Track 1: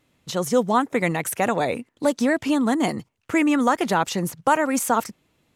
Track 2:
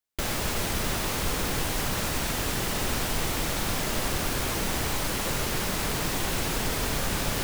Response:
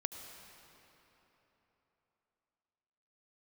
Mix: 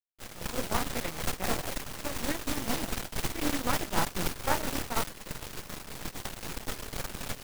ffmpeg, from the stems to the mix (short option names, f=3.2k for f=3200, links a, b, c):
-filter_complex "[0:a]afwtdn=0.0398,flanger=delay=20:depth=6.4:speed=2.9,volume=-4.5dB[a];[1:a]volume=2dB[b];[a][b]amix=inputs=2:normalize=0,agate=range=-31dB:threshold=-24dB:ratio=16:detection=peak,aeval=exprs='max(val(0),0)':c=same,tremolo=f=4:d=0.56"